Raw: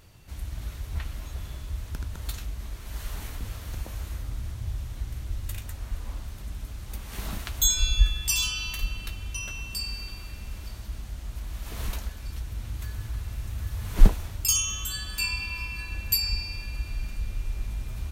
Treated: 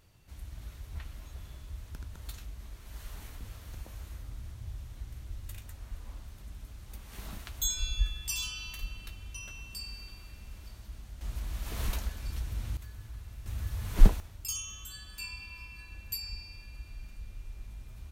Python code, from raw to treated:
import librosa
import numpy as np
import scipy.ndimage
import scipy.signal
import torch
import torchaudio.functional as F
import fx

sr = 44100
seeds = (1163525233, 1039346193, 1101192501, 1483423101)

y = fx.gain(x, sr, db=fx.steps((0.0, -9.0), (11.21, -1.0), (12.77, -11.0), (13.46, -3.0), (14.2, -12.5)))